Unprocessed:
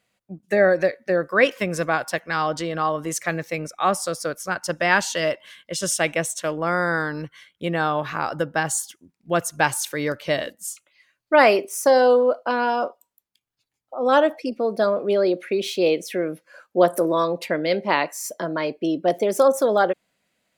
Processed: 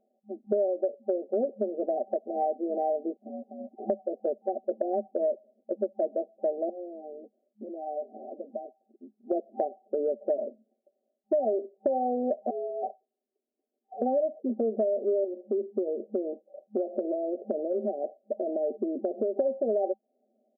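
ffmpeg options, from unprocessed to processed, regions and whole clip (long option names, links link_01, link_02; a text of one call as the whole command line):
ffmpeg -i in.wav -filter_complex "[0:a]asettb=1/sr,asplit=3[link_01][link_02][link_03];[link_01]atrim=end=3.164[link_04];[link_02]atrim=start=3.16:end=3.9,asetpts=PTS-STARTPTS,afade=type=in:duration=0.004:curve=qsin,afade=type=out:start_time=0.736:duration=0.004:curve=qsin,aeval=exprs='val(0)*sin(2*PI*400*n/s)':channel_layout=same,acompressor=threshold=-36dB:ratio=20:attack=3.2:release=140:knee=1:detection=peak[link_05];[link_03]atrim=start=3.896[link_06];[link_04][link_05]acrossfade=duration=0.004:curve1=hsin:curve2=qsin[link_07];[link_07][link_06]acrossfade=duration=0.004:curve1=qsin:curve2=hsin,asettb=1/sr,asplit=3[link_08][link_09][link_10];[link_08]atrim=end=6.694[link_11];[link_09]atrim=start=6.69:end=8.81,asetpts=PTS-STARTPTS,afade=type=in:duration=0.004:curve=qsin,afade=type=out:start_time=2.116:duration=0.004:curve=qsin,acompressor=threshold=-36dB:ratio=2.5:attack=3.2:release=140:knee=1:detection=peak,bandreject=frequency=470:width=14,flanger=delay=0.8:depth=4.4:regen=-55:speed=1.1:shape=triangular[link_12];[link_10]atrim=start=8.806[link_13];[link_11][link_12]acrossfade=duration=0.004:curve1=hsin:curve2=qsin[link_14];[link_14][link_13]acrossfade=duration=0.004:curve1=qsin:curve2=hsin,asettb=1/sr,asplit=3[link_15][link_16][link_17];[link_15]atrim=end=12.504[link_18];[link_16]atrim=start=12.5:end=14.02,asetpts=PTS-STARTPTS,afade=type=in:duration=0.004:curve=qsin,afade=type=out:start_time=1.516:duration=0.004:curve=qsin,asoftclip=type=hard:threshold=-25.5dB,acompressor=threshold=-43dB:ratio=1.5:attack=3.2:release=140:knee=1:detection=peak,afreqshift=180[link_19];[link_17]atrim=start=14.016[link_20];[link_18][link_19]acrossfade=duration=0.004:curve1=hsin:curve2=qsin[link_21];[link_21][link_20]acrossfade=duration=0.004:curve1=qsin:curve2=hsin,asettb=1/sr,asplit=3[link_22][link_23][link_24];[link_22]atrim=end=15.244[link_25];[link_23]atrim=start=15.24:end=19.37,asetpts=PTS-STARTPTS,afade=type=in:duration=0.004:curve=qsin,afade=type=out:start_time=4.126:duration=0.004:curve=qsin,lowpass=3900,aemphasis=mode=production:type=75kf,acompressor=threshold=-28dB:ratio=3:attack=3.2:release=140:knee=1:detection=peak[link_26];[link_24]atrim=start=19.366[link_27];[link_25][link_26]acrossfade=duration=0.004:curve1=hsin:curve2=qsin[link_28];[link_28][link_27]acrossfade=duration=0.004:curve1=qsin:curve2=hsin,afftfilt=real='re*between(b*sr/4096,210,780)':imag='im*between(b*sr/4096,210,780)':win_size=4096:overlap=0.75,aecho=1:1:5:0.75,acompressor=threshold=-30dB:ratio=6,volume=4.5dB" out.wav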